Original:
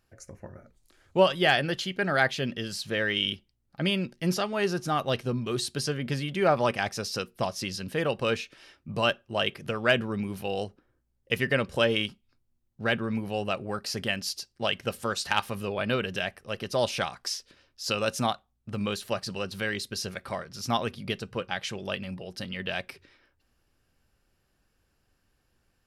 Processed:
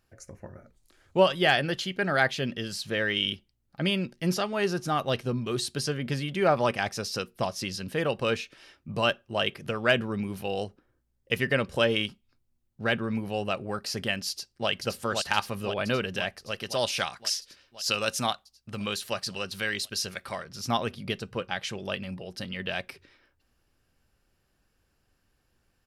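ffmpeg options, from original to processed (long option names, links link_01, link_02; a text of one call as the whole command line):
ffmpeg -i in.wav -filter_complex "[0:a]asplit=2[link_01][link_02];[link_02]afade=type=in:start_time=14.29:duration=0.01,afade=type=out:start_time=14.69:duration=0.01,aecho=0:1:520|1040|1560|2080|2600|3120|3640|4160|4680|5200|5720|6240:0.630957|0.44167|0.309169|0.216418|0.151493|0.106045|0.0742315|0.0519621|0.0363734|0.0254614|0.017823|0.0124761[link_03];[link_01][link_03]amix=inputs=2:normalize=0,asettb=1/sr,asplit=3[link_04][link_05][link_06];[link_04]atrim=end=16.514[link_07];[link_05]atrim=start=16.51:end=20.44,asetpts=PTS-STARTPTS,afade=type=in:duration=0.004:curve=qsin,afade=type=out:start_time=3.926:duration=0.004:curve=qsin,tiltshelf=frequency=1200:gain=-4[link_08];[link_06]atrim=start=20.436[link_09];[link_07][link_08]acrossfade=duration=0.004:curve1=hsin:curve2=qsin[link_10];[link_10][link_09]acrossfade=duration=0.004:curve1=qsin:curve2=hsin" out.wav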